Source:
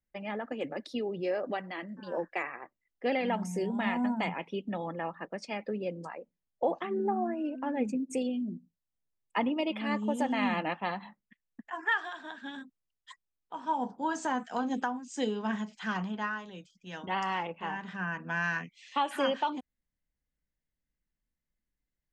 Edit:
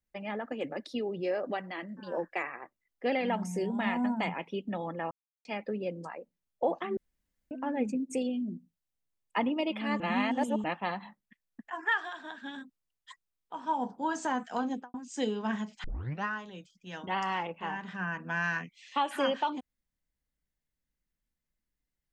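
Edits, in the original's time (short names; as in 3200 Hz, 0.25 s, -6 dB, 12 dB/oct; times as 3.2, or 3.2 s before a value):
5.11–5.45 mute
6.97–7.51 room tone
10–10.64 reverse
14.64–14.94 studio fade out
15.84 tape start 0.40 s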